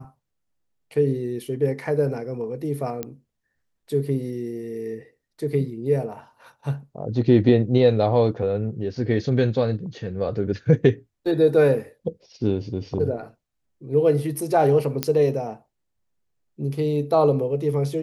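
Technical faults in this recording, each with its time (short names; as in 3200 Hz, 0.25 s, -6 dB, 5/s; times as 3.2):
3.03 pop -14 dBFS
15.03 pop -6 dBFS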